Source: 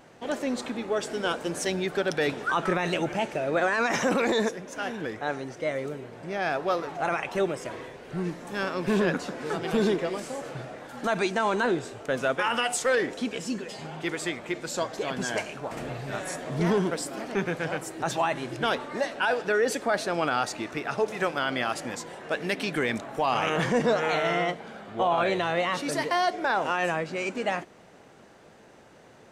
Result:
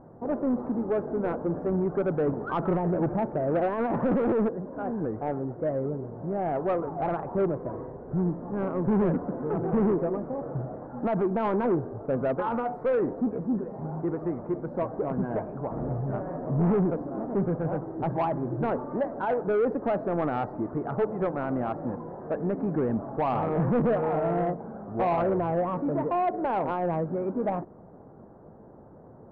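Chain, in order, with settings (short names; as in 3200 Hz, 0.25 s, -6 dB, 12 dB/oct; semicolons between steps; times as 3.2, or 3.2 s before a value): inverse Chebyshev low-pass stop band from 2900 Hz, stop band 50 dB; low shelf 320 Hz +9.5 dB; soft clip -19 dBFS, distortion -14 dB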